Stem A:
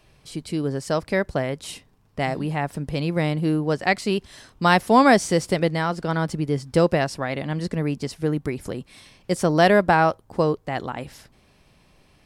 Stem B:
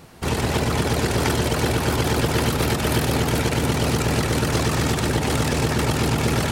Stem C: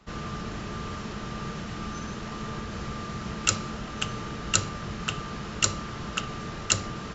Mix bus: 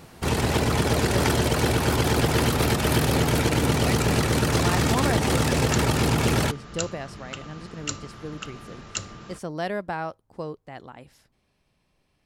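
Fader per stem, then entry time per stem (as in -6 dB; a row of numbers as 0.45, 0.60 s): -13.0, -1.0, -7.0 dB; 0.00, 0.00, 2.25 s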